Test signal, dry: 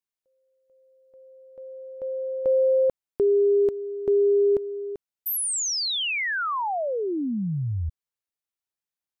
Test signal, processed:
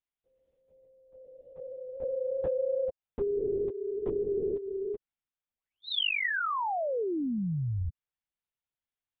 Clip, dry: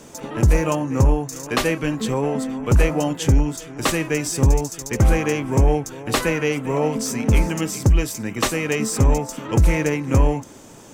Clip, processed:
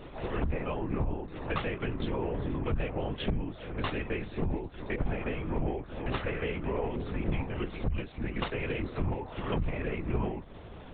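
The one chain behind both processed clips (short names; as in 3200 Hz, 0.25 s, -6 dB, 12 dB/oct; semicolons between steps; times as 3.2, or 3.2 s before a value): compressor 8:1, threshold -27 dBFS; LPC vocoder at 8 kHz whisper; gain -1.5 dB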